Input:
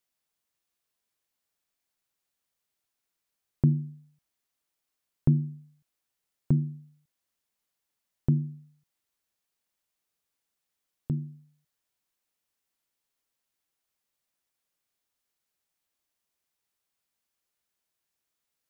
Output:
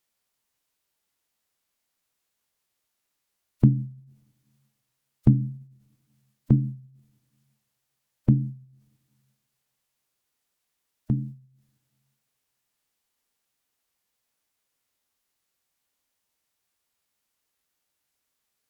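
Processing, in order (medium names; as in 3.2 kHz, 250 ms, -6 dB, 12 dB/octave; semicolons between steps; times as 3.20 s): two-slope reverb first 0.21 s, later 1.8 s, from -22 dB, DRR 16 dB; wow and flutter 28 cents; formant-preserving pitch shift -2 st; trim +5 dB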